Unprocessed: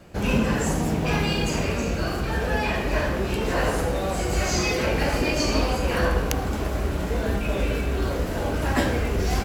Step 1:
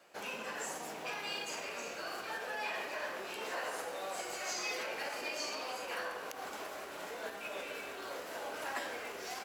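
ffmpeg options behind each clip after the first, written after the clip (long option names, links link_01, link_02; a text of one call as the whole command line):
ffmpeg -i in.wav -af "alimiter=limit=-17dB:level=0:latency=1:release=127,highpass=640,volume=-8dB" out.wav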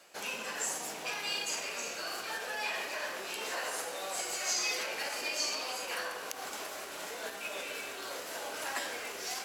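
ffmpeg -i in.wav -af "equalizer=frequency=8500:width_type=o:width=2.8:gain=9.5,areverse,acompressor=mode=upward:threshold=-44dB:ratio=2.5,areverse" out.wav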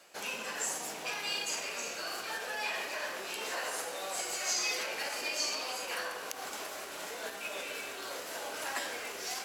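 ffmpeg -i in.wav -af anull out.wav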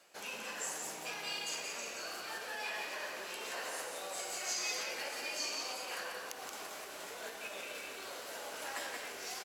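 ffmpeg -i in.wav -af "aecho=1:1:177:0.562,volume=-5.5dB" out.wav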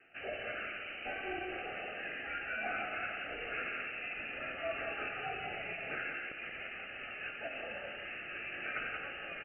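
ffmpeg -i in.wav -af "asuperstop=centerf=2200:order=4:qfactor=4.3,lowpass=frequency=2700:width_type=q:width=0.5098,lowpass=frequency=2700:width_type=q:width=0.6013,lowpass=frequency=2700:width_type=q:width=0.9,lowpass=frequency=2700:width_type=q:width=2.563,afreqshift=-3200,highshelf=frequency=2100:gain=-10.5,volume=8.5dB" out.wav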